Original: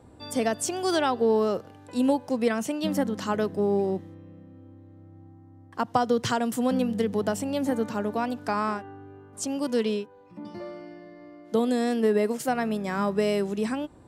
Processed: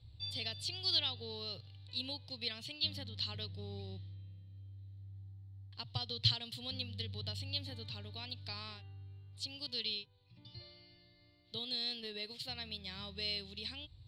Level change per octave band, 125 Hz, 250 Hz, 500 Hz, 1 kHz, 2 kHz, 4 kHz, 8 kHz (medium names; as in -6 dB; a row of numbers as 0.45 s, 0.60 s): -5.5 dB, -26.0 dB, -26.0 dB, -25.5 dB, -14.0 dB, +3.5 dB, -20.5 dB